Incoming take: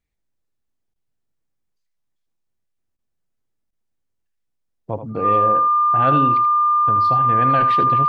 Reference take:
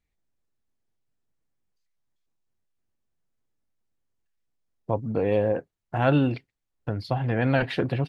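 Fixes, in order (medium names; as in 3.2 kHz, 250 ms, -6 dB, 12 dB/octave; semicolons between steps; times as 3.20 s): band-stop 1.2 kHz, Q 30; interpolate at 0.94/2.97/3.71 s, 16 ms; inverse comb 79 ms -10.5 dB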